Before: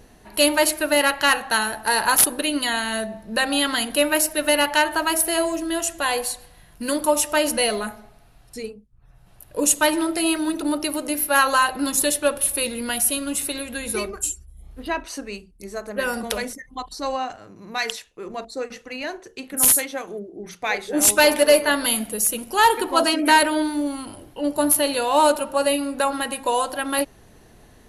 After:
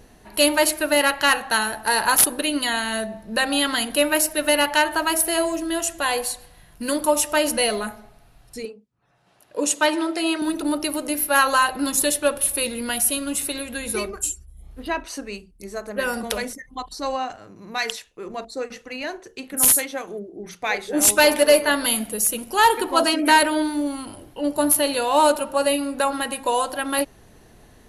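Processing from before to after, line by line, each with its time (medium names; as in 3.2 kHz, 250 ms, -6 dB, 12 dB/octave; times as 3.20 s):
8.65–10.42 s: band-pass 250–6900 Hz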